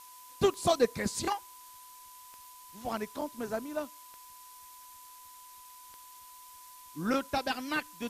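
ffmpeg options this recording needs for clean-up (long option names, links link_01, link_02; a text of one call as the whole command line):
ffmpeg -i in.wav -af "adeclick=threshold=4,bandreject=frequency=1000:width=30,afftdn=noise_reduction=27:noise_floor=-52" out.wav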